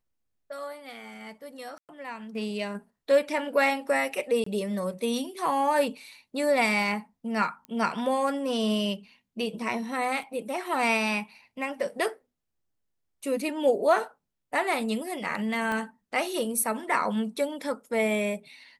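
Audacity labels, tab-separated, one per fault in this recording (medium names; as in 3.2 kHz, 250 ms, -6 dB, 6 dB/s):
1.780000	1.890000	dropout 108 ms
4.440000	4.460000	dropout 24 ms
7.650000	7.650000	pop -27 dBFS
10.230000	10.230000	dropout 3.3 ms
15.720000	15.720000	pop -19 dBFS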